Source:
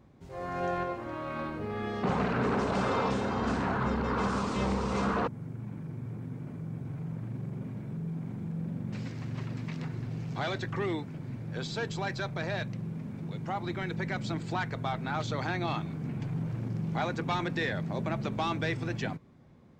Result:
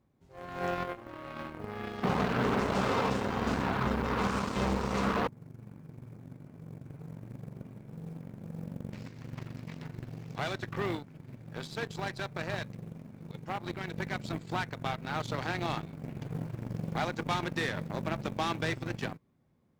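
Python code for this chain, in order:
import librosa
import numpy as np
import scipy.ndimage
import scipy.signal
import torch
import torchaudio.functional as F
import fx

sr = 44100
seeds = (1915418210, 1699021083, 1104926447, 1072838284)

y = fx.quant_companded(x, sr, bits=8)
y = fx.cheby_harmonics(y, sr, harmonics=(7,), levels_db=(-19,), full_scale_db=-18.0)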